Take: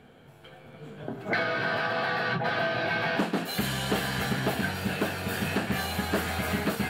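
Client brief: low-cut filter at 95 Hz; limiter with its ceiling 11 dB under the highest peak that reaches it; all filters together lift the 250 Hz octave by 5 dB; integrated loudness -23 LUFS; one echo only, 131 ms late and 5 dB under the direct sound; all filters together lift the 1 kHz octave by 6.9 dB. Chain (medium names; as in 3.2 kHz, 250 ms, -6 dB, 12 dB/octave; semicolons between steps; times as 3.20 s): high-pass 95 Hz; peaking EQ 250 Hz +6.5 dB; peaking EQ 1 kHz +9 dB; peak limiter -19 dBFS; delay 131 ms -5 dB; trim +4 dB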